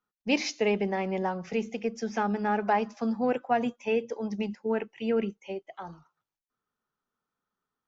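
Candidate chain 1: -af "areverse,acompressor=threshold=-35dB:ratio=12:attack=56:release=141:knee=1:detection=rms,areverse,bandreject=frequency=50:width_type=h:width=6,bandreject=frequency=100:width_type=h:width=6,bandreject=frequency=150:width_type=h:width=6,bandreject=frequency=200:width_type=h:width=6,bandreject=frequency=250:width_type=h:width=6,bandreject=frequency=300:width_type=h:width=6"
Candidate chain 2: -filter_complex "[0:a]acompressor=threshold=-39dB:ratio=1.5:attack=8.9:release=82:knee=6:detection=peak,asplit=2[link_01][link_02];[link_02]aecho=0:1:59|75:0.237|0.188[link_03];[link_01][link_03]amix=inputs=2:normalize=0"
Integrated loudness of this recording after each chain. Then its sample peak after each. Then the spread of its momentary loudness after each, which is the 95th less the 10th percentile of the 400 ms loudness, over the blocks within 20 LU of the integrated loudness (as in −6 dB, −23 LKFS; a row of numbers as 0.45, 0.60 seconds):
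−38.0, −34.5 LKFS; −23.5, −18.5 dBFS; 4, 8 LU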